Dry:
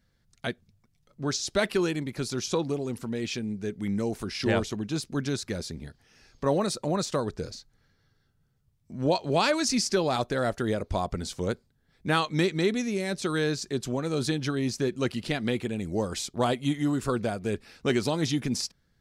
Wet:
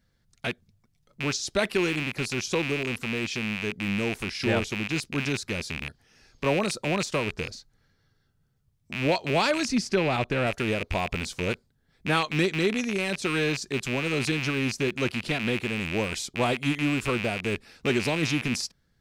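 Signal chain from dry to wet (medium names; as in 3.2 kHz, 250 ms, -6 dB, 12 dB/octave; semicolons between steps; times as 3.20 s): rattle on loud lows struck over -39 dBFS, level -19 dBFS; 9.65–10.47 s: tone controls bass +4 dB, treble -8 dB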